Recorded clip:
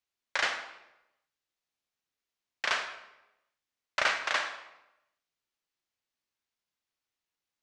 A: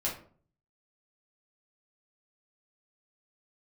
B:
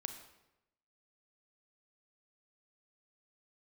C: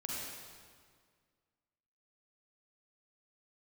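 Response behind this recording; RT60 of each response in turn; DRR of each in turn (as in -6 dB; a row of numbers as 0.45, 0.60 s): B; 0.45, 0.90, 1.9 s; -5.5, 7.0, -4.5 dB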